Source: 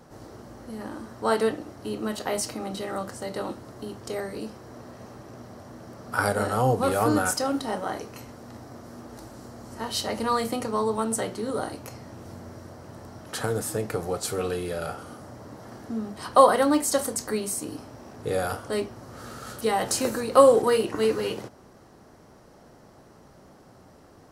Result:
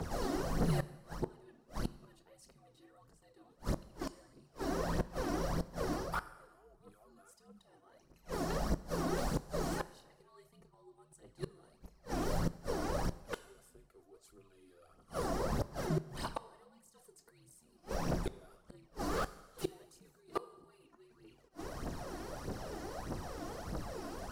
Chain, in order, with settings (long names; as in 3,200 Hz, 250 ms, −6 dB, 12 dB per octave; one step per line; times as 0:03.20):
reversed playback
downward compressor 8 to 1, threshold −32 dBFS, peak gain reduction 21.5 dB
reversed playback
phase shifter 1.6 Hz, delay 2.8 ms, feedback 65%
frequency shifter −72 Hz
gate with flip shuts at −29 dBFS, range −36 dB
on a send at −16 dB: convolution reverb RT60 1.1 s, pre-delay 5 ms
on the sum: slew-rate limiting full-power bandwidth 15 Hz
level +7 dB